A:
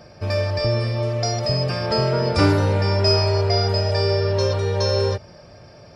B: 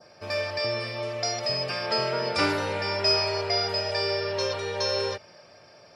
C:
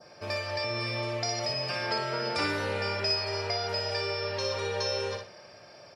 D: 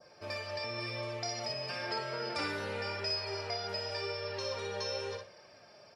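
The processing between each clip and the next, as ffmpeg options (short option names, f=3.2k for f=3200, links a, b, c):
-af "highpass=f=610:p=1,adynamicequalizer=threshold=0.01:dfrequency=2500:dqfactor=1.2:tfrequency=2500:tqfactor=1.2:attack=5:release=100:ratio=0.375:range=2.5:mode=boostabove:tftype=bell,volume=-3dB"
-af "acompressor=threshold=-30dB:ratio=2.5,aecho=1:1:60|120|180|240:0.562|0.152|0.041|0.0111"
-af "flanger=delay=1.8:depth=3.1:regen=61:speed=0.95:shape=sinusoidal,volume=-2dB"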